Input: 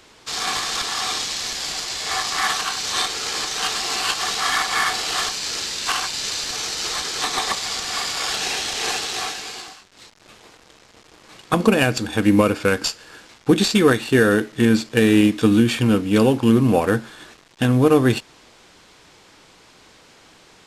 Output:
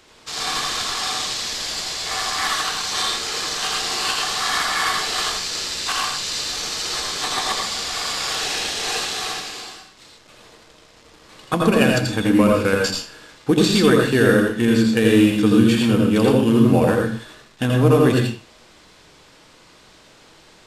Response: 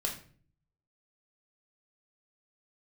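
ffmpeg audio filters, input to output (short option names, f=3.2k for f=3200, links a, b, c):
-filter_complex "[0:a]asplit=2[a][b];[1:a]atrim=start_sample=2205,afade=t=out:st=0.24:d=0.01,atrim=end_sample=11025,adelay=82[c];[b][c]afir=irnorm=-1:irlink=0,volume=-3.5dB[d];[a][d]amix=inputs=2:normalize=0,volume=-2.5dB"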